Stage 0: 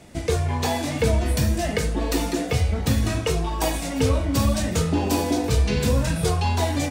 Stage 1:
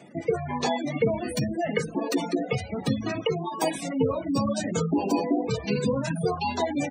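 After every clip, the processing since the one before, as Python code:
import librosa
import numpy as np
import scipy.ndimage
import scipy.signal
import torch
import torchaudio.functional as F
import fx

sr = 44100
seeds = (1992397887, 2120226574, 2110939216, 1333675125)

y = fx.dereverb_blind(x, sr, rt60_s=0.57)
y = scipy.signal.sosfilt(scipy.signal.butter(4, 140.0, 'highpass', fs=sr, output='sos'), y)
y = fx.spec_gate(y, sr, threshold_db=-20, keep='strong')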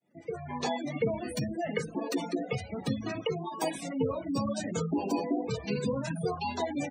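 y = fx.fade_in_head(x, sr, length_s=0.62)
y = y * librosa.db_to_amplitude(-5.5)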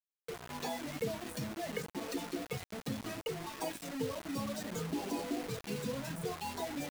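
y = fx.echo_feedback(x, sr, ms=567, feedback_pct=54, wet_db=-22.0)
y = fx.quant_dither(y, sr, seeds[0], bits=6, dither='none')
y = y * librosa.db_to_amplitude(-7.5)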